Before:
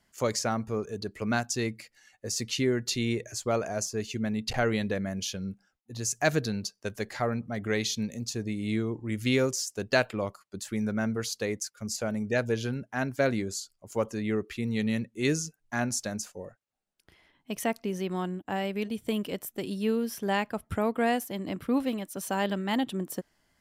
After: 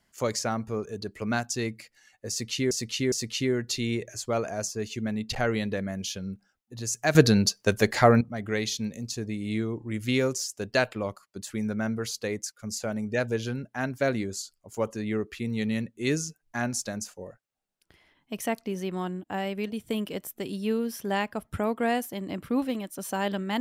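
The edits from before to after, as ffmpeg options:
-filter_complex "[0:a]asplit=5[s0][s1][s2][s3][s4];[s0]atrim=end=2.712[s5];[s1]atrim=start=2.298:end=2.712[s6];[s2]atrim=start=2.298:end=6.332[s7];[s3]atrim=start=6.328:end=7.392,asetpts=PTS-STARTPTS,volume=3.55[s8];[s4]atrim=start=7.388[s9];[s5][s6]acrossfade=d=0.004:c1=hsin:c2=hsin[s10];[s10][s7]acrossfade=d=0.004:c1=hsin:c2=hsin[s11];[s11][s8]acrossfade=d=0.004:c1=hsin:c2=hsin[s12];[s12][s9]acrossfade=d=0.004:c1=hsin:c2=hsin"

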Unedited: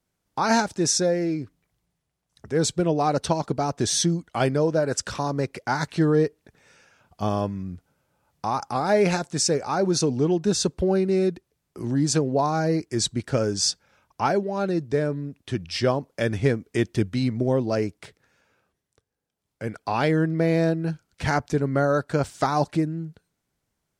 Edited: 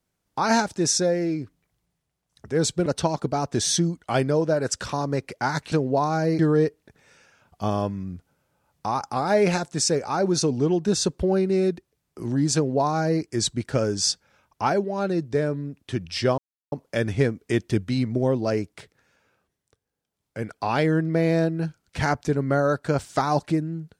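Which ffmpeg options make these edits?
-filter_complex "[0:a]asplit=5[s0][s1][s2][s3][s4];[s0]atrim=end=2.862[s5];[s1]atrim=start=3.118:end=5.982[s6];[s2]atrim=start=12.138:end=12.812[s7];[s3]atrim=start=5.978:end=15.97,asetpts=PTS-STARTPTS,afade=t=out:st=9.988:d=0.004:c=hsin,apad=pad_dur=0.34[s8];[s4]atrim=start=15.97,asetpts=PTS-STARTPTS,afade=t=in:d=0.004:c=hsin[s9];[s5][s6]acrossfade=d=0.004:c1=hsin:c2=hsin[s10];[s10][s7]acrossfade=d=0.004:c1=hsin:c2=hsin[s11];[s8][s9]concat=n=2:v=0:a=1[s12];[s11][s12]acrossfade=d=0.004:c1=hsin:c2=hsin"

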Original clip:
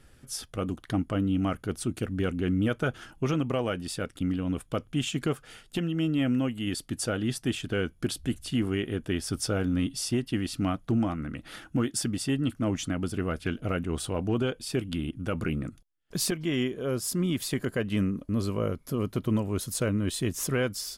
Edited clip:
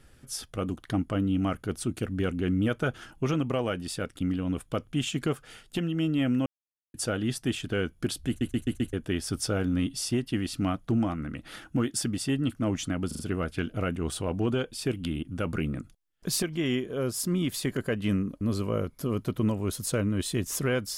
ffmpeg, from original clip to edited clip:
-filter_complex "[0:a]asplit=11[s0][s1][s2][s3][s4][s5][s6][s7][s8][s9][s10];[s0]atrim=end=6.46,asetpts=PTS-STARTPTS,afade=t=out:st=6.456:d=0.004:c=hsin[s11];[s1]atrim=start=6.46:end=6.94,asetpts=PTS-STARTPTS,volume=0[s12];[s2]atrim=start=6.94:end=8.412,asetpts=PTS-STARTPTS,afade=t=in:d=0.004:c=hsin[s13];[s3]atrim=start=8.278:end=8.412[s14];[s4]atrim=start=8.278:end=8.412[s15];[s5]atrim=start=8.278:end=8.412[s16];[s6]atrim=start=8.278:end=8.412[s17];[s7]atrim=start=8.928:end=13.112[s18];[s8]atrim=start=13.068:end=13.112[s19];[s9]atrim=start=13.068:end=13.112[s20];[s10]atrim=start=13.068[s21];[s11][s12][s13]concat=n=3:v=0:a=1[s22];[s22][s14]acrossfade=d=0.004:c1=hsin:c2=hsin[s23];[s23][s15]acrossfade=d=0.004:c1=hsin:c2=hsin[s24];[s24][s16]acrossfade=d=0.004:c1=hsin:c2=hsin[s25];[s25][s17]acrossfade=d=0.004:c1=hsin:c2=hsin[s26];[s26][s18]acrossfade=d=0.004:c1=hsin:c2=hsin[s27];[s27][s19]acrossfade=d=0.004:c1=hsin:c2=hsin[s28];[s28][s20]acrossfade=d=0.004:c1=hsin:c2=hsin[s29];[s29][s21]acrossfade=d=0.004:c1=hsin:c2=hsin"

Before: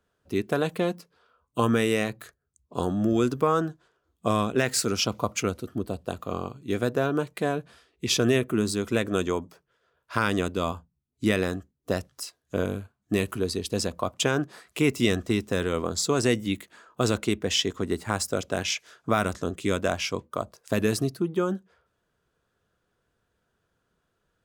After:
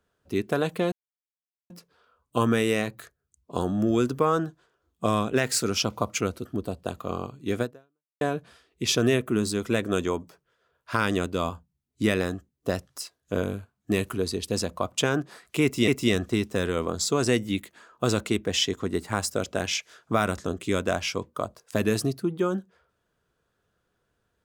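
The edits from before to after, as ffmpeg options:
-filter_complex "[0:a]asplit=4[s0][s1][s2][s3];[s0]atrim=end=0.92,asetpts=PTS-STARTPTS,afade=t=out:st=0.916:d=0.004:c=hsin,apad=pad_dur=0.78[s4];[s1]atrim=start=0.92:end=7.43,asetpts=PTS-STARTPTS,afade=t=in:d=0.004:c=hsin,afade=t=out:st=5.92:d=0.59:c=exp[s5];[s2]atrim=start=7.43:end=15.102,asetpts=PTS-STARTPTS,afade=t=in:d=0.004:c=hsin[s6];[s3]atrim=start=14.848[s7];[s4][s5][s6]concat=n=3:v=0:a=1[s8];[s8][s7]acrossfade=d=0.004:c1=hsin:c2=hsin"

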